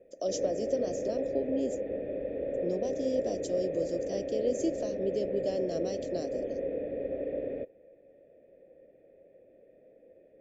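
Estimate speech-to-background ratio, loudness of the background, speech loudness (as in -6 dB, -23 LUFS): 0.5 dB, -35.0 LUFS, -34.5 LUFS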